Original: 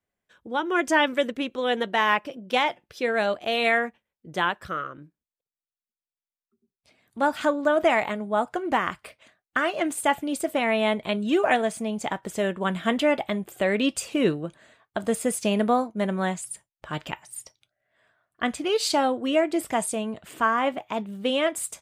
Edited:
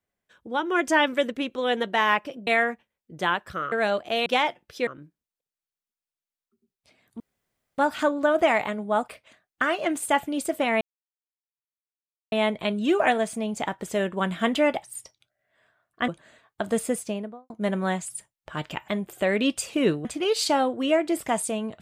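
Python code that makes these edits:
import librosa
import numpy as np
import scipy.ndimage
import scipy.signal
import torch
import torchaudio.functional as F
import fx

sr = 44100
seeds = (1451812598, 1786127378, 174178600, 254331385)

y = fx.studio_fade_out(x, sr, start_s=15.13, length_s=0.73)
y = fx.edit(y, sr, fx.swap(start_s=2.47, length_s=0.61, other_s=3.62, other_length_s=1.25),
    fx.insert_room_tone(at_s=7.2, length_s=0.58),
    fx.cut(start_s=8.5, length_s=0.53),
    fx.insert_silence(at_s=10.76, length_s=1.51),
    fx.swap(start_s=13.27, length_s=1.17, other_s=17.24, other_length_s=1.25), tone=tone)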